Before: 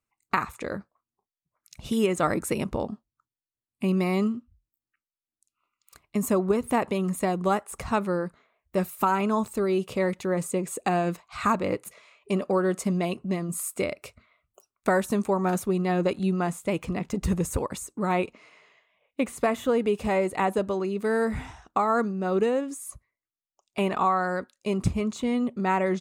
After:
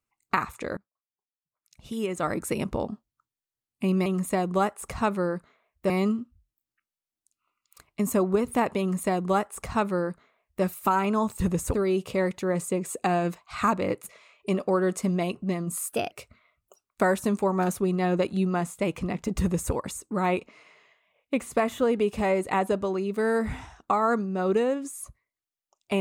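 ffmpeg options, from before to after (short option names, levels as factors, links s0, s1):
-filter_complex "[0:a]asplit=8[s0][s1][s2][s3][s4][s5][s6][s7];[s0]atrim=end=0.77,asetpts=PTS-STARTPTS,afade=t=out:st=0.766:d=0.004:c=hsin:silence=0.0794328[s8];[s1]atrim=start=0.77:end=4.062,asetpts=PTS-STARTPTS,afade=t=in:d=1.88:c=qua:silence=0.0794328[s9];[s2]atrim=start=6.958:end=8.802[s10];[s3]atrim=start=4.058:end=9.562[s11];[s4]atrim=start=17.258:end=17.602[s12];[s5]atrim=start=9.558:end=13.714[s13];[s6]atrim=start=13.71:end=13.98,asetpts=PTS-STARTPTS,asetrate=52479,aresample=44100[s14];[s7]atrim=start=13.976[s15];[s8][s9]concat=n=2:v=0:a=1[s16];[s16][s10]acrossfade=d=0.004:c1=hsin:c2=hsin[s17];[s17][s11]acrossfade=d=0.004:c1=hsin:c2=hsin[s18];[s18][s12]acrossfade=d=0.004:c1=hsin:c2=hsin[s19];[s19][s13]acrossfade=d=0.004:c1=hsin:c2=hsin[s20];[s20][s14]acrossfade=d=0.004:c1=hsin:c2=hsin[s21];[s21][s15]acrossfade=d=0.004:c1=hsin:c2=hsin"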